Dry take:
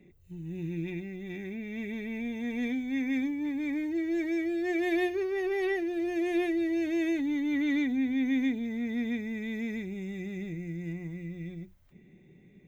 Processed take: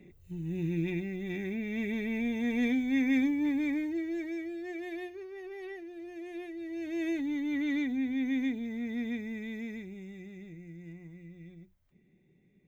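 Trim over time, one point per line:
3.54 s +3 dB
4.14 s -5 dB
5.13 s -13 dB
6.53 s -13 dB
7.08 s -3 dB
9.32 s -3 dB
10.39 s -10 dB

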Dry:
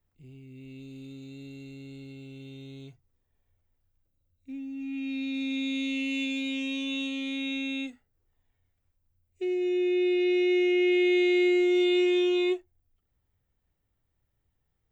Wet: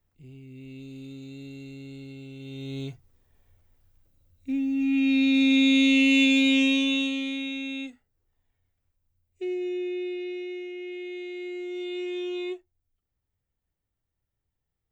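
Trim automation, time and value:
2.38 s +2.5 dB
2.79 s +11 dB
6.62 s +11 dB
7.53 s -1 dB
9.49 s -1 dB
10.72 s -13.5 dB
11.36 s -13.5 dB
12.35 s -6.5 dB

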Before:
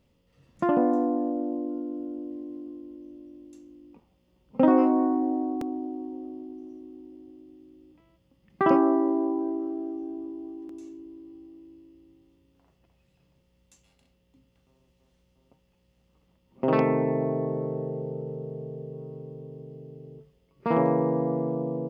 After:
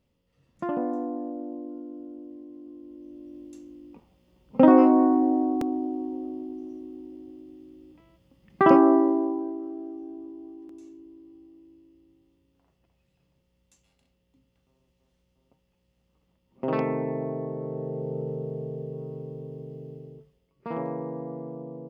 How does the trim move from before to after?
2.54 s -6 dB
3.38 s +4 dB
8.96 s +4 dB
9.55 s -4 dB
17.57 s -4 dB
18.21 s +3 dB
19.92 s +3 dB
20.71 s -9 dB

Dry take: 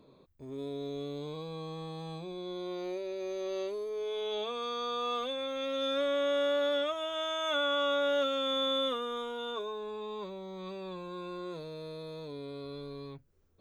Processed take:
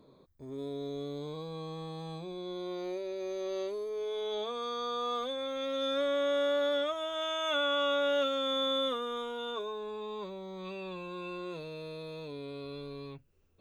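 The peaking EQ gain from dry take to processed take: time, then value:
peaking EQ 2.7 kHz 0.22 oct
-12 dB
from 1.55 s -4.5 dB
from 4.05 s -14 dB
from 5.46 s -7 dB
from 7.22 s +4 dB
from 8.28 s -6 dB
from 9.07 s +0.5 dB
from 10.65 s +12 dB

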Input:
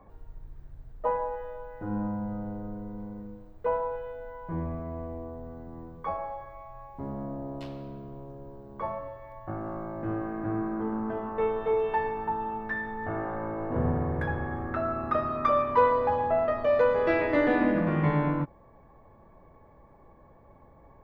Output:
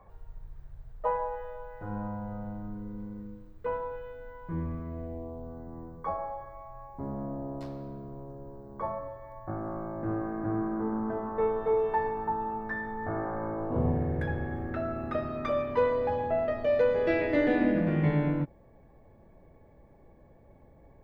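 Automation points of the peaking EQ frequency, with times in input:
peaking EQ -12.5 dB 0.74 oct
2.33 s 270 Hz
2.88 s 710 Hz
4.86 s 710 Hz
5.65 s 2.9 kHz
13.52 s 2.9 kHz
14.03 s 1.1 kHz

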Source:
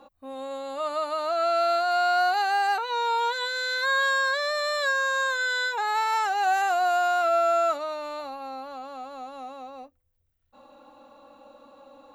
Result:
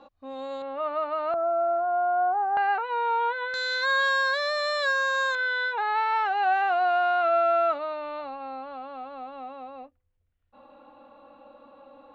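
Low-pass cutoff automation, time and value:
low-pass 24 dB/octave
5.6 kHz
from 0.62 s 2.6 kHz
from 1.34 s 1.1 kHz
from 2.57 s 2.5 kHz
from 3.54 s 6.3 kHz
from 5.35 s 3.3 kHz

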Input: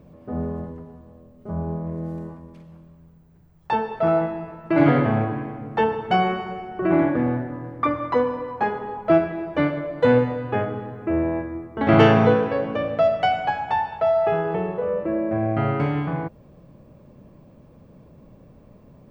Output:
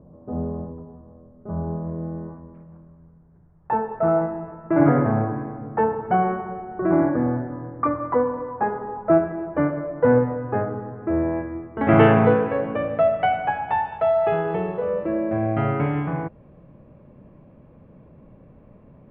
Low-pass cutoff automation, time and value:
low-pass 24 dB/octave
0.80 s 1.1 kHz
1.62 s 1.6 kHz
10.97 s 1.6 kHz
11.49 s 2.5 kHz
13.49 s 2.5 kHz
14.64 s 4.5 kHz
15.27 s 4.5 kHz
15.77 s 2.7 kHz

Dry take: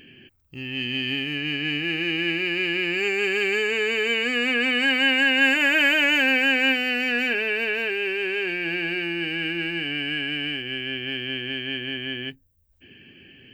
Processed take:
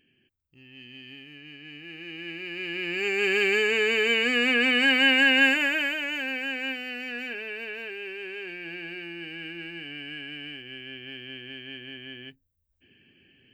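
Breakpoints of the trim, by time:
1.65 s -18.5 dB
2.49 s -11 dB
3.32 s 0 dB
5.38 s 0 dB
6.00 s -11 dB

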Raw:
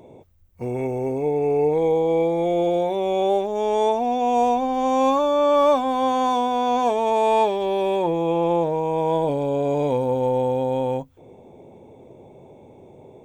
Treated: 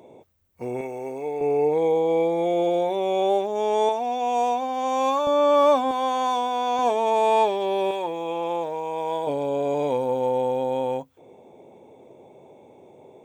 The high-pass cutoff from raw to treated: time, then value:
high-pass 6 dB/octave
310 Hz
from 0.81 s 850 Hz
from 1.41 s 280 Hz
from 3.89 s 720 Hz
from 5.27 s 200 Hz
from 5.91 s 690 Hz
from 6.79 s 310 Hz
from 7.91 s 990 Hz
from 9.27 s 370 Hz

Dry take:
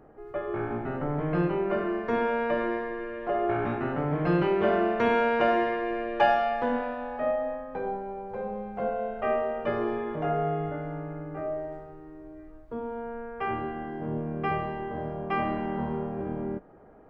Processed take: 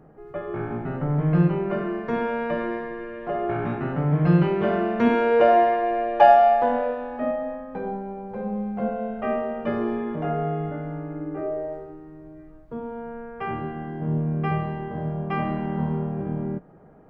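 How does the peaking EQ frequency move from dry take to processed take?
peaking EQ +11.5 dB 0.66 oct
4.88 s 160 Hz
5.57 s 700 Hz
6.73 s 700 Hz
7.34 s 210 Hz
10.94 s 210 Hz
11.73 s 530 Hz
12.15 s 160 Hz

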